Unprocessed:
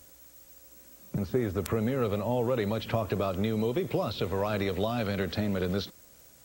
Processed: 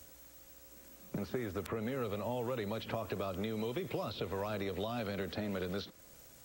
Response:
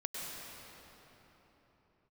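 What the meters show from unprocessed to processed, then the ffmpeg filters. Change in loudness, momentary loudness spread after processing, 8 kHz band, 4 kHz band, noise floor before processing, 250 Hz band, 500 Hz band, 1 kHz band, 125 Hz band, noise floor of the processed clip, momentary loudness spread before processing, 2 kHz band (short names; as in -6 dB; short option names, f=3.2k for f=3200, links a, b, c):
-8.5 dB, 16 LU, -6.0 dB, -6.5 dB, -56 dBFS, -9.0 dB, -8.5 dB, -7.0 dB, -10.5 dB, -58 dBFS, 16 LU, -6.5 dB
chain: -filter_complex "[0:a]acrossover=split=220|1100|4100[a][b][c][d];[a]acompressor=threshold=-46dB:ratio=4[e];[b]acompressor=threshold=-38dB:ratio=4[f];[c]acompressor=threshold=-47dB:ratio=4[g];[d]acompressor=threshold=-55dB:ratio=4[h];[e][f][g][h]amix=inputs=4:normalize=0"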